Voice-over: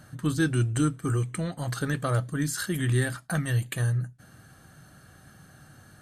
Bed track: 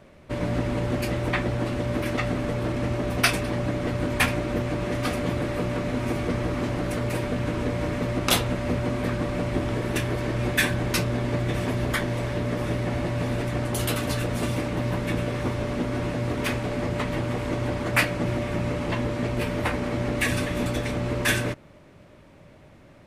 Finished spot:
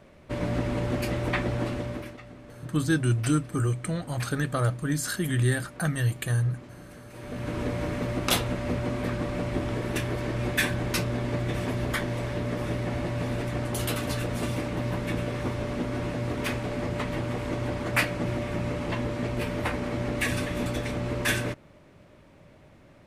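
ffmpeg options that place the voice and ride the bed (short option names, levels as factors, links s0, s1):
-filter_complex "[0:a]adelay=2500,volume=1.06[s0];[1:a]volume=5.31,afade=t=out:st=1.65:d=0.52:silence=0.133352,afade=t=in:st=7.13:d=0.47:silence=0.149624[s1];[s0][s1]amix=inputs=2:normalize=0"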